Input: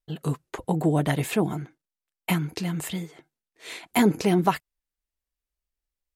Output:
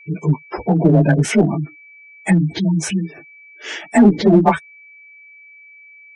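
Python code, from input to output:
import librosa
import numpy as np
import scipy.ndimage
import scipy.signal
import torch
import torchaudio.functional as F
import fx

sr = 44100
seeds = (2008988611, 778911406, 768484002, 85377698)

p1 = fx.partial_stretch(x, sr, pct=92)
p2 = p1 + 10.0 ** (-54.0 / 20.0) * np.sin(2.0 * np.pi * 2300.0 * np.arange(len(p1)) / sr)
p3 = fx.spec_gate(p2, sr, threshold_db=-20, keep='strong')
p4 = fx.clip_asym(p3, sr, top_db=-23.5, bottom_db=-17.5)
p5 = p3 + F.gain(torch.from_numpy(p4), -3.0).numpy()
y = F.gain(torch.from_numpy(p5), 8.0).numpy()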